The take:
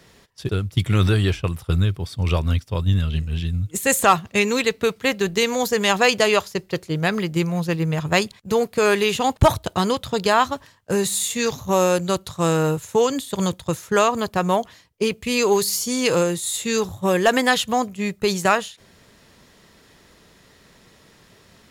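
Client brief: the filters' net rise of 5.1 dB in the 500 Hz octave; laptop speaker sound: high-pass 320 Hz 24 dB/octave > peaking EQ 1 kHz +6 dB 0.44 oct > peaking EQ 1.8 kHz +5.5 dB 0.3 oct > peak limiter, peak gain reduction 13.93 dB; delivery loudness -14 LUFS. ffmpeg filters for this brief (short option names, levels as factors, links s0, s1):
-af "highpass=f=320:w=0.5412,highpass=f=320:w=1.3066,equalizer=f=500:t=o:g=6,equalizer=f=1000:t=o:w=0.44:g=6,equalizer=f=1800:t=o:w=0.3:g=5.5,volume=2.82,alimiter=limit=0.75:level=0:latency=1"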